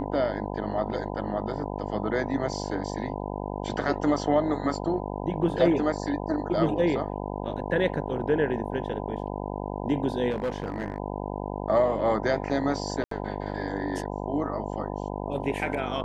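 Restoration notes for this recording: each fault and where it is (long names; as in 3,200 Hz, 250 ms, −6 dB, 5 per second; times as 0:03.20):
mains buzz 50 Hz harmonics 20 −33 dBFS
0:10.30–0:10.98: clipping −24 dBFS
0:13.04–0:13.11: drop-out 73 ms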